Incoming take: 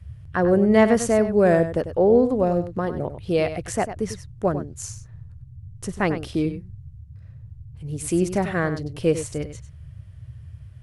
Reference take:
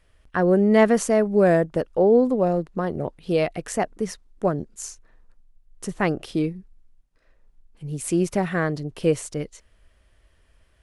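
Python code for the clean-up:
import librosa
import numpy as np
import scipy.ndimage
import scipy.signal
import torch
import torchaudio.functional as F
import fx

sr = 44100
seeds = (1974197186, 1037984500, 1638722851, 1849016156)

y = fx.noise_reduce(x, sr, print_start_s=6.9, print_end_s=7.4, reduce_db=16.0)
y = fx.fix_echo_inverse(y, sr, delay_ms=97, level_db=-11.0)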